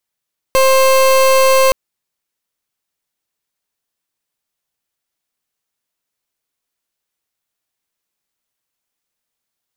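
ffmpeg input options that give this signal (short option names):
-f lavfi -i "aevalsrc='0.316*(2*lt(mod(529*t,1),0.3)-1)':d=1.17:s=44100"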